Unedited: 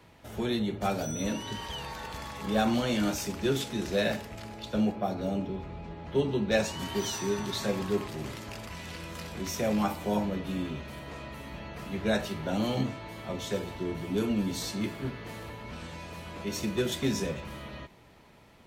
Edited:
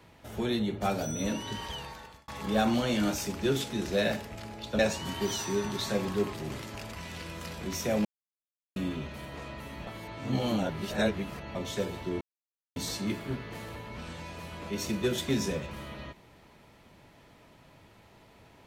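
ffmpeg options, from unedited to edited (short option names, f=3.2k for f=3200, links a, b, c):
-filter_complex "[0:a]asplit=9[a][b][c][d][e][f][g][h][i];[a]atrim=end=2.28,asetpts=PTS-STARTPTS,afade=t=out:st=1.68:d=0.6[j];[b]atrim=start=2.28:end=4.792,asetpts=PTS-STARTPTS,afade=t=in:d=0.004:c=hsin[k];[c]atrim=start=6.528:end=9.79,asetpts=PTS-STARTPTS,afade=t=out:st=3.258:d=0.004:c=hsin[l];[d]atrim=start=9.79:end=10.5,asetpts=PTS-STARTPTS,volume=0[m];[e]atrim=start=10.5:end=11.612,asetpts=PTS-STARTPTS,afade=t=in:d=0.004:c=hsin[n];[f]atrim=start=11.608:end=13.292,asetpts=PTS-STARTPTS,areverse[o];[g]atrim=start=13.288:end=13.95,asetpts=PTS-STARTPTS,afade=t=out:st=0.658:d=0.004:c=hsin[p];[h]atrim=start=13.95:end=14.5,asetpts=PTS-STARTPTS,volume=0[q];[i]atrim=start=14.5,asetpts=PTS-STARTPTS,afade=t=in:d=0.004:c=hsin[r];[j][k]concat=n=2:v=0:a=1[s];[l][m][n]concat=n=3:v=0:a=1[t];[s][t]acrossfade=d=0.004:c1=hsin:c2=hsin[u];[u][o]acrossfade=d=0.004:c1=hsin:c2=hsin[v];[p][q][r]concat=n=3:v=0:a=1[w];[v][w]acrossfade=d=0.004:c1=hsin:c2=hsin"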